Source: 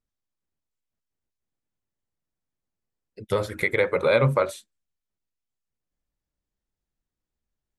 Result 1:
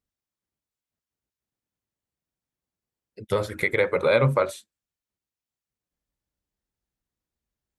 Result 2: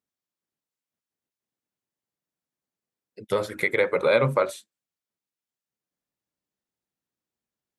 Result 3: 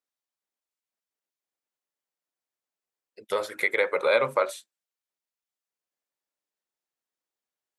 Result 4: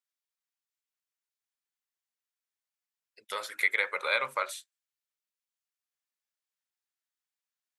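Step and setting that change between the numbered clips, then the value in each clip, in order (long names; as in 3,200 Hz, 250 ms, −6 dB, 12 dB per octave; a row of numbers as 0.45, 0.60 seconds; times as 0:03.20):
high-pass filter, corner frequency: 40, 160, 490, 1,300 Hertz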